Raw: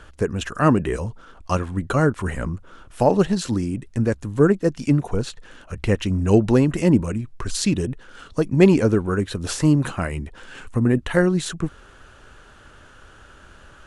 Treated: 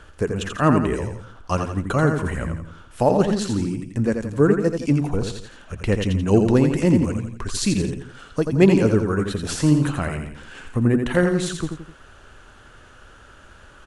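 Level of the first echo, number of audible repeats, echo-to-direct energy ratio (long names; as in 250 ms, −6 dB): −6.0 dB, 3, −5.0 dB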